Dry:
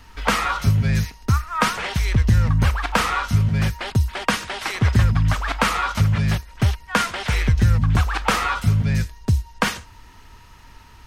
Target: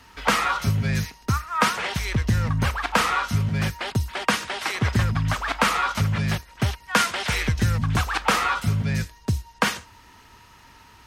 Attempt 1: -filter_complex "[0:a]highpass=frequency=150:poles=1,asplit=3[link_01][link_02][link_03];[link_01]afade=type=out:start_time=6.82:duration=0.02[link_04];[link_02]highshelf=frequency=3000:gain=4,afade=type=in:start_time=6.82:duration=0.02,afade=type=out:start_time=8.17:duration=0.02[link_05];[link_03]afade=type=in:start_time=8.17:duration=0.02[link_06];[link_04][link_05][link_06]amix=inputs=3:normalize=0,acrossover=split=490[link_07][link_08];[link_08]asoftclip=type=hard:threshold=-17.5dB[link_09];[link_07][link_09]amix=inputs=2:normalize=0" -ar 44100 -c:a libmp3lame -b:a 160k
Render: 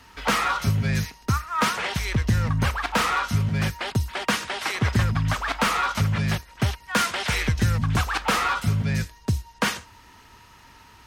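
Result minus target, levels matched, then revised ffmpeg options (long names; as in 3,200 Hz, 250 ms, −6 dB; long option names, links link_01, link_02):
hard clipping: distortion +16 dB
-filter_complex "[0:a]highpass=frequency=150:poles=1,asplit=3[link_01][link_02][link_03];[link_01]afade=type=out:start_time=6.82:duration=0.02[link_04];[link_02]highshelf=frequency=3000:gain=4,afade=type=in:start_time=6.82:duration=0.02,afade=type=out:start_time=8.17:duration=0.02[link_05];[link_03]afade=type=in:start_time=8.17:duration=0.02[link_06];[link_04][link_05][link_06]amix=inputs=3:normalize=0,acrossover=split=490[link_07][link_08];[link_08]asoftclip=type=hard:threshold=-8.5dB[link_09];[link_07][link_09]amix=inputs=2:normalize=0" -ar 44100 -c:a libmp3lame -b:a 160k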